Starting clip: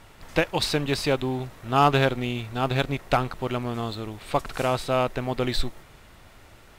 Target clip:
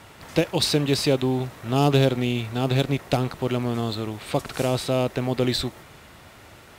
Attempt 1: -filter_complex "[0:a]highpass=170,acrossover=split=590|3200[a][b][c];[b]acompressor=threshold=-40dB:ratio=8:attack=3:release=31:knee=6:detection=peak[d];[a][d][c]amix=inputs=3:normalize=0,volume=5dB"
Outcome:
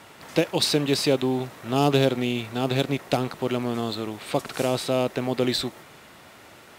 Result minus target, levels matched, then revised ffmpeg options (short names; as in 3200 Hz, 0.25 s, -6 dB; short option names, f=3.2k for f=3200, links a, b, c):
125 Hz band -4.0 dB
-filter_complex "[0:a]highpass=78,acrossover=split=590|3200[a][b][c];[b]acompressor=threshold=-40dB:ratio=8:attack=3:release=31:knee=6:detection=peak[d];[a][d][c]amix=inputs=3:normalize=0,volume=5dB"